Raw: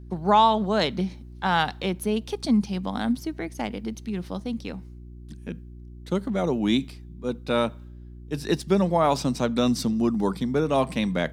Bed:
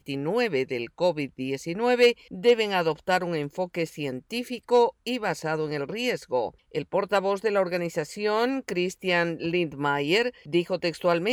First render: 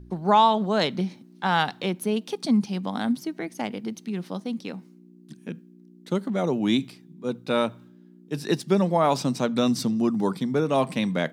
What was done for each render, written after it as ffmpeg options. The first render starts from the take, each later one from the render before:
-af "bandreject=f=60:t=h:w=4,bandreject=f=120:t=h:w=4"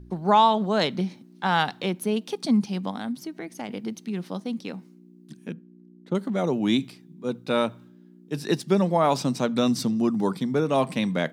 -filter_complex "[0:a]asettb=1/sr,asplit=3[a][b][c];[a]atrim=end=2.914[d];[b]atrim=start=2.91:end=3.69,asetpts=PTS-STARTPTS,afade=t=in:d=0.004:c=qsin,afade=t=out:st=0.776:d=0.004:c=qsin,acompressor=threshold=-37dB:ratio=1.5:attack=3.2:release=140:knee=1:detection=peak[e];[c]atrim=start=3.686[f];[d][e]acrossfade=d=0.004:c1=hsin:c2=qsin[g];[g][f]acrossfade=d=0.004:c1=qsin:c2=hsin,asettb=1/sr,asplit=3[h][i][j];[h]atrim=end=5.534[k];[i]atrim=start=5.53:end=6.15,asetpts=PTS-STARTPTS,afade=t=in:d=0.004:c=qsin,afade=t=out:st=0.616:d=0.004:c=qsin,lowpass=f=1.1k:p=1[l];[j]atrim=start=6.146[m];[k][l]acrossfade=d=0.004:c1=hsin:c2=qsin[n];[n][m]acrossfade=d=0.004:c1=qsin:c2=hsin"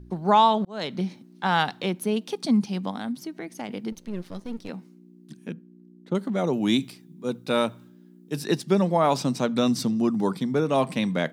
-filter_complex "[0:a]asettb=1/sr,asplit=3[a][b][c];[a]atrim=end=3.924[d];[b]atrim=start=3.92:end=4.69,asetpts=PTS-STARTPTS,afade=t=in:d=0.004:c=qsin,afade=t=out:st=0.766:d=0.004:c=qsin,aeval=exprs='if(lt(val(0),0),0.251*val(0),val(0))':c=same[e];[c]atrim=start=4.686[f];[d][e]acrossfade=d=0.004:c1=hsin:c2=qsin[g];[g][f]acrossfade=d=0.004:c1=qsin:c2=hsin,asettb=1/sr,asplit=3[h][i][j];[h]atrim=end=6.534[k];[i]atrim=start=6.53:end=8.44,asetpts=PTS-STARTPTS,afade=t=in:d=0.004:c=qsin,afade=t=out:st=1.906:d=0.004:c=qsin,highshelf=f=7k:g=8.5[l];[j]atrim=start=8.436[m];[k][l]acrossfade=d=0.004:c1=hsin:c2=qsin[n];[n][m]acrossfade=d=0.004:c1=qsin:c2=hsin,asplit=2[o][p];[o]atrim=end=0.65,asetpts=PTS-STARTPTS,afade=t=out:st=0.646:d=0.004:c=hsin[q];[p]atrim=start=0.65,asetpts=PTS-STARTPTS,afade=t=in:d=0.41[r];[q][r]concat=n=2:v=0:a=1"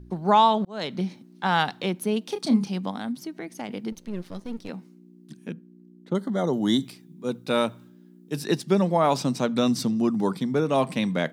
-filter_complex "[0:a]asettb=1/sr,asplit=3[a][b][c];[a]atrim=end=2.264[d];[b]atrim=start=2.26:end=2.71,asetpts=PTS-STARTPTS,afade=t=in:d=0.004:c=qsin,afade=t=out:st=0.446:d=0.004:c=qsin,asplit=2[e][f];[f]adelay=31,volume=-7dB[g];[e][g]amix=inputs=2:normalize=0,atrim=end_sample=19845[h];[c]atrim=start=2.706[i];[d][h]acrossfade=d=0.004:c1=hsin:c2=qsin[j];[j][i]acrossfade=d=0.004:c1=qsin:c2=hsin,asettb=1/sr,asplit=3[k][l][m];[k]atrim=end=6.134[n];[l]atrim=start=6.13:end=6.86,asetpts=PTS-STARTPTS,afade=t=in:d=0.004:c=qsin,afade=t=out:st=0.726:d=0.004:c=qsin,asuperstop=centerf=2500:order=12:qfactor=3.1[o];[m]atrim=start=6.856[p];[n][o]acrossfade=d=0.004:c1=hsin:c2=qsin[q];[q][p]acrossfade=d=0.004:c1=qsin:c2=hsin"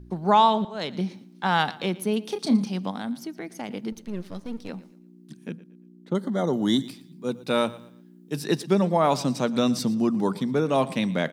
-af "aecho=1:1:116|232|348:0.112|0.0348|0.0108"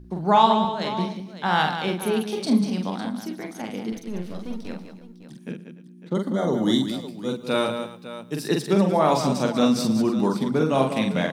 -af "aecho=1:1:45|190|295|554:0.631|0.376|0.126|0.211"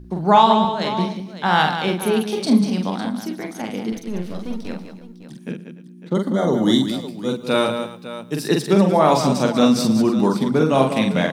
-af "volume=4.5dB,alimiter=limit=-1dB:level=0:latency=1"

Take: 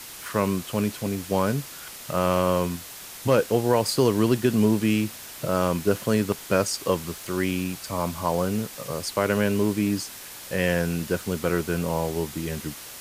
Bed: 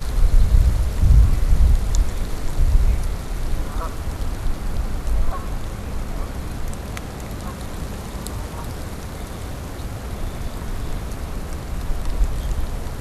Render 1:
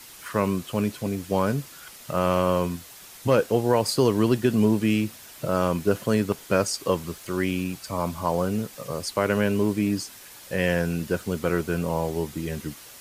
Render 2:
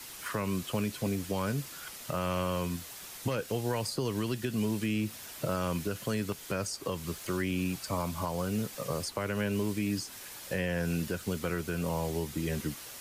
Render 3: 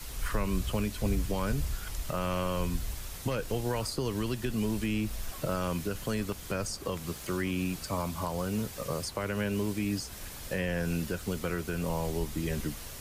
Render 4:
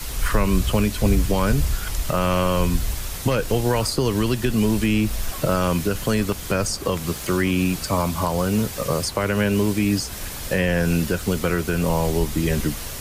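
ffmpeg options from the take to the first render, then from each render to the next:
-af "afftdn=nr=6:nf=-41"
-filter_complex "[0:a]acrossover=split=160|1600[a][b][c];[a]acompressor=threshold=-34dB:ratio=4[d];[b]acompressor=threshold=-31dB:ratio=4[e];[c]acompressor=threshold=-36dB:ratio=4[f];[d][e][f]amix=inputs=3:normalize=0,alimiter=limit=-21.5dB:level=0:latency=1:release=201"
-filter_complex "[1:a]volume=-19dB[a];[0:a][a]amix=inputs=2:normalize=0"
-af "volume=11dB"

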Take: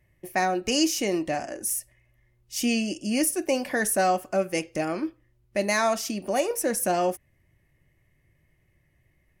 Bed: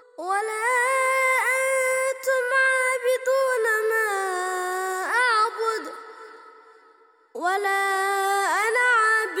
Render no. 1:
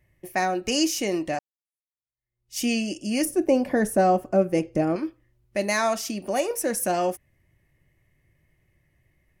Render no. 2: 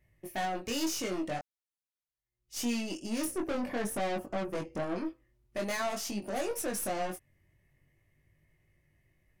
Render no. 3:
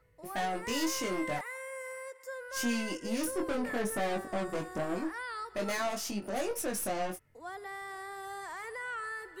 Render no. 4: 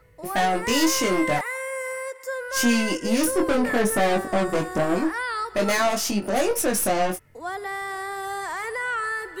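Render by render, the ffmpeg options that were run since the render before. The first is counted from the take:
-filter_complex "[0:a]asettb=1/sr,asplit=3[a][b][c];[a]atrim=end=3.254[d];[b]atrim=start=3.25:end=4.96,asetpts=PTS-STARTPTS,afade=t=in:d=0.004:c=qsin,afade=t=out:st=1.706:d=0.004:c=qsin,tiltshelf=f=970:g=8.5[e];[c]atrim=start=4.956[f];[d][e]acrossfade=d=0.004:c1=hsin:c2=qsin[g];[g][f]acrossfade=d=0.004:c1=qsin:c2=hsin,asplit=2[h][i];[h]atrim=end=1.39,asetpts=PTS-STARTPTS,afade=t=out:st=1.386:d=0.004:c=hsin[j];[i]atrim=start=1.39,asetpts=PTS-STARTPTS,afade=t=in:d=1.19:c=exp[k];[j][k]concat=n=2:v=0:a=1"
-af "aeval=exprs='(tanh(22.4*val(0)+0.35)-tanh(0.35))/22.4':c=same,flanger=delay=19.5:depth=2.3:speed=0.47"
-filter_complex "[1:a]volume=-19.5dB[a];[0:a][a]amix=inputs=2:normalize=0"
-af "volume=11.5dB"

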